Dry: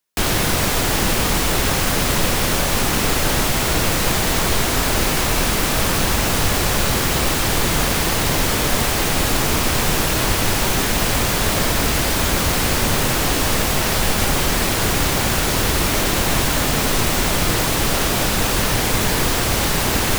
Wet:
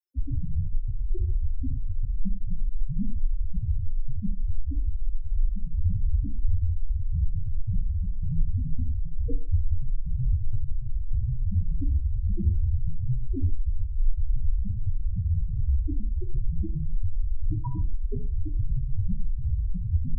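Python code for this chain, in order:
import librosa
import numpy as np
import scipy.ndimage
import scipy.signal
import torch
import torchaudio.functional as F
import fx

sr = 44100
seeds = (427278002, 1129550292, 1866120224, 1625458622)

y = fx.spec_topn(x, sr, count=1)
y = fx.rev_gated(y, sr, seeds[0], gate_ms=190, shape='falling', drr_db=6.0)
y = F.gain(torch.from_numpy(y), 6.5).numpy()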